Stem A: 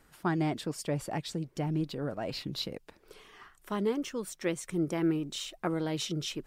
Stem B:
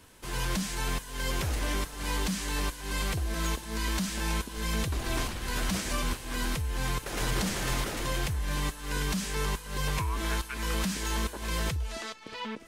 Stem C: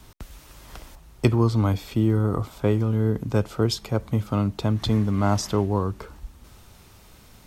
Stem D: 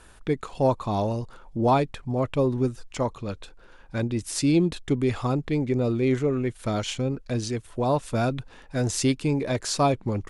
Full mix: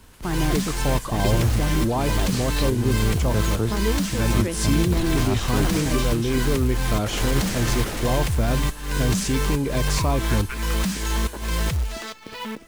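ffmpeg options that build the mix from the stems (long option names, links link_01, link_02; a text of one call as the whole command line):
ffmpeg -i stem1.wav -i stem2.wav -i stem3.wav -i stem4.wav -filter_complex "[0:a]volume=-0.5dB,asplit=2[link_01][link_02];[1:a]acrusher=bits=3:mode=log:mix=0:aa=0.000001,volume=1dB[link_03];[2:a]volume=-7.5dB[link_04];[3:a]adelay=250,volume=-1.5dB[link_05];[link_02]apad=whole_len=329084[link_06];[link_04][link_06]sidechaincompress=threshold=-43dB:ratio=8:attack=16:release=101[link_07];[link_01][link_05]amix=inputs=2:normalize=0,alimiter=limit=-21dB:level=0:latency=1,volume=0dB[link_08];[link_03][link_07][link_08]amix=inputs=3:normalize=0,lowshelf=frequency=210:gain=4.5,dynaudnorm=framelen=200:gausssize=3:maxgain=3dB" out.wav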